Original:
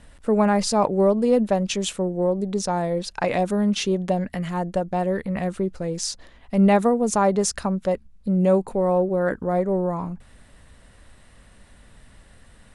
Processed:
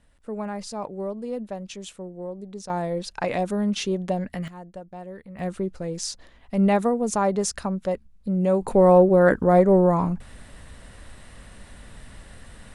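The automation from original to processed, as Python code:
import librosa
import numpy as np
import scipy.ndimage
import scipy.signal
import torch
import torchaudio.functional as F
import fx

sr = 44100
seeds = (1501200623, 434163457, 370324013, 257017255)

y = fx.gain(x, sr, db=fx.steps((0.0, -12.5), (2.7, -3.0), (4.48, -15.0), (5.39, -3.0), (8.62, 6.0)))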